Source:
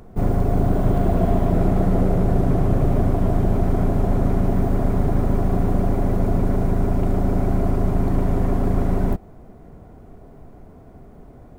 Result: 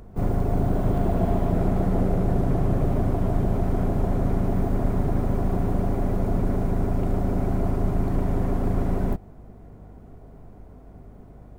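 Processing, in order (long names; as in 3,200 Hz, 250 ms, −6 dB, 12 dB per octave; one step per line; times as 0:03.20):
pitch-shifted copies added +4 semitones −15 dB
mains hum 50 Hz, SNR 25 dB
level −4 dB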